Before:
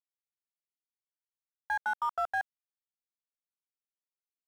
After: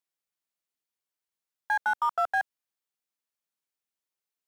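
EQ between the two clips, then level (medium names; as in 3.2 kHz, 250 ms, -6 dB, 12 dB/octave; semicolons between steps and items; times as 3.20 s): high-pass 150 Hz 6 dB/octave; +5.0 dB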